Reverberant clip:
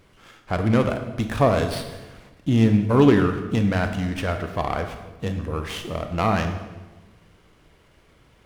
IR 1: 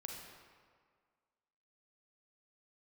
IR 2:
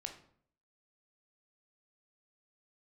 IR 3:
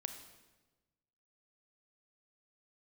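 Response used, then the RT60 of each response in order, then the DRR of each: 3; 1.8, 0.60, 1.2 s; 0.0, 3.5, 7.0 dB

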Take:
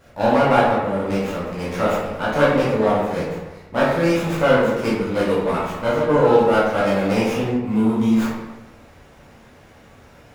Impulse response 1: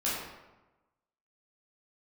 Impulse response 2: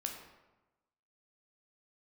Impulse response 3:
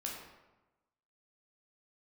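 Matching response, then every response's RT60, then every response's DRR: 1; 1.1, 1.1, 1.1 s; -8.5, 2.0, -2.5 dB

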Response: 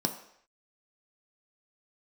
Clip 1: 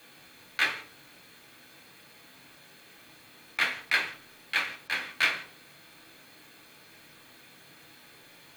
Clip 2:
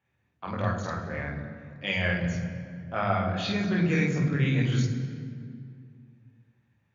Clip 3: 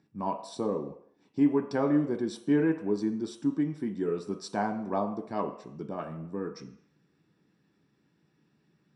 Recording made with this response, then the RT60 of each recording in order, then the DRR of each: 3; 0.50 s, 2.3 s, not exponential; 1.0, -2.0, 4.0 dB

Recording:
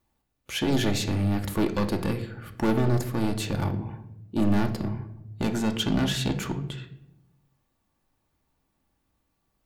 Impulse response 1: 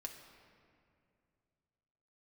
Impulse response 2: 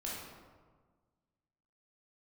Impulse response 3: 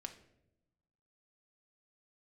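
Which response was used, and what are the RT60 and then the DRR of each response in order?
3; 2.4, 1.5, 0.85 s; 2.0, -6.0, 4.0 dB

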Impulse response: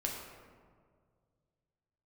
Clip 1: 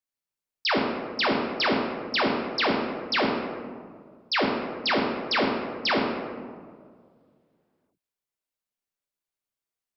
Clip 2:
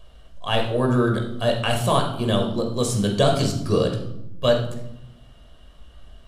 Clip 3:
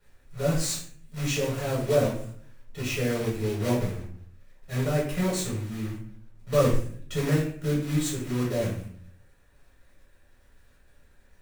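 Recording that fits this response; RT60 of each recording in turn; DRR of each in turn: 1; 1.9, 0.85, 0.55 s; -1.5, 1.5, -6.0 dB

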